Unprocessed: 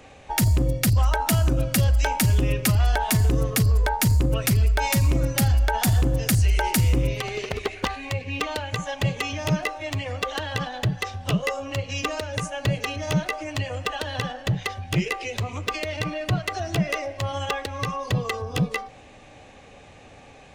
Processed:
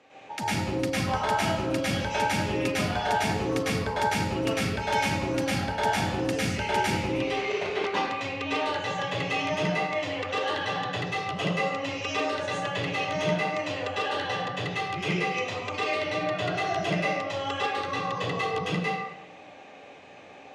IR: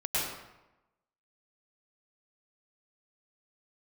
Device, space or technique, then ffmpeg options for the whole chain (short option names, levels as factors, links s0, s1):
supermarket ceiling speaker: -filter_complex "[0:a]highpass=240,lowpass=5300[s0];[1:a]atrim=start_sample=2205[s1];[s0][s1]afir=irnorm=-1:irlink=0,volume=0.422"